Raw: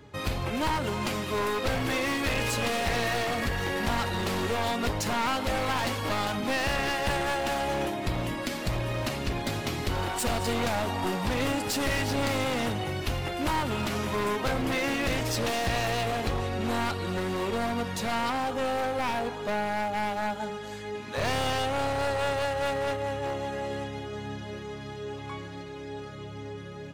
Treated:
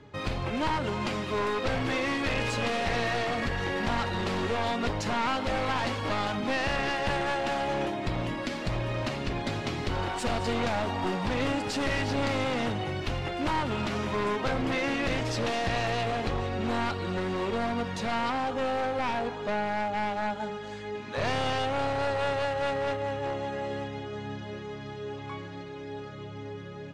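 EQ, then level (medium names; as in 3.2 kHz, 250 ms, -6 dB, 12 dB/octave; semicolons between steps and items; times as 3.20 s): distance through air 83 m; peaking EQ 67 Hz -7 dB 0.41 oct; 0.0 dB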